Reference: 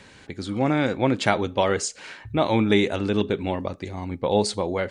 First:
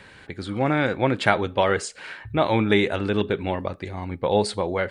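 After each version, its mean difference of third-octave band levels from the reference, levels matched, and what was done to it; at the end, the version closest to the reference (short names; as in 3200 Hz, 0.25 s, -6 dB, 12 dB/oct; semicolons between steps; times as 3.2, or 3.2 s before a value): 1.5 dB: fifteen-band EQ 250 Hz -4 dB, 1600 Hz +4 dB, 6300 Hz -9 dB; gain +1 dB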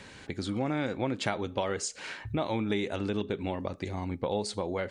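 3.0 dB: compressor 3:1, threshold -30 dBFS, peak gain reduction 12 dB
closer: first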